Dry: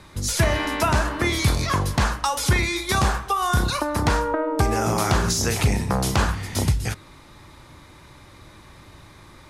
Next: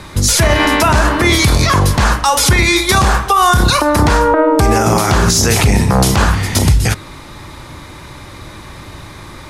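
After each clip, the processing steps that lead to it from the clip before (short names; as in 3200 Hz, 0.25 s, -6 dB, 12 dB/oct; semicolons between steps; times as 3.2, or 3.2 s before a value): maximiser +15 dB; gain -1 dB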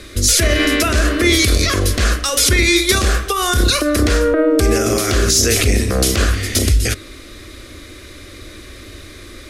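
fixed phaser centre 370 Hz, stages 4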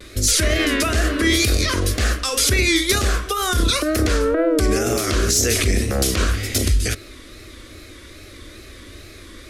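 wow and flutter 110 cents; gain -4 dB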